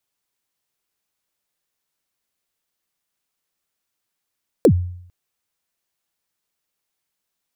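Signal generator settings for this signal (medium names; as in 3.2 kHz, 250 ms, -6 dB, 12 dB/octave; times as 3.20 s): kick drum length 0.45 s, from 560 Hz, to 89 Hz, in 75 ms, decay 0.67 s, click on, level -6 dB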